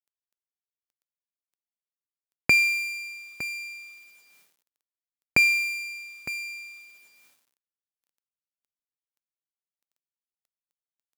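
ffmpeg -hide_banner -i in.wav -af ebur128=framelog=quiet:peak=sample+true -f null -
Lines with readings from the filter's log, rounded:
Integrated loudness:
  I:         -24.0 LUFS
  Threshold: -36.2 LUFS
Loudness range:
  LRA:        12.8 LU
  Threshold: -48.3 LUFS
  LRA low:   -39.6 LUFS
  LRA high:  -26.8 LUFS
Sample peak:
  Peak:       -6.4 dBFS
True peak:
  Peak:       -6.4 dBFS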